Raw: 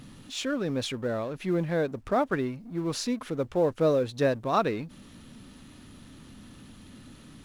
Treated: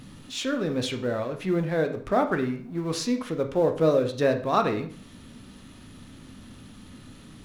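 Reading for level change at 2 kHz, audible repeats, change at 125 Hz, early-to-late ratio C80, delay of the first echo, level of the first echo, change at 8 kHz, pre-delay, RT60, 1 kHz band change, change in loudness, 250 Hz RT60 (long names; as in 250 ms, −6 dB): +2.5 dB, no echo audible, +2.0 dB, 15.0 dB, no echo audible, no echo audible, +1.5 dB, 6 ms, 0.50 s, +2.5 dB, +2.5 dB, 0.50 s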